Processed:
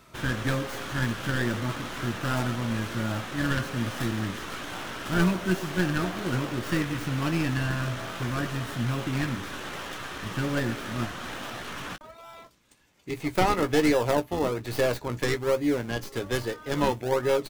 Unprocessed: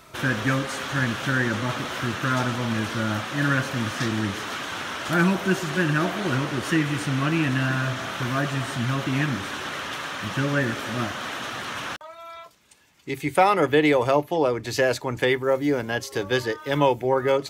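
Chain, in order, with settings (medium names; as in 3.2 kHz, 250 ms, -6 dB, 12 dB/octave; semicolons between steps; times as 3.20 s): tracing distortion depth 0.19 ms; in parallel at -6.5 dB: decimation with a swept rate 39×, swing 100% 1.2 Hz; on the sum: doubling 17 ms -10.5 dB; trim -6.5 dB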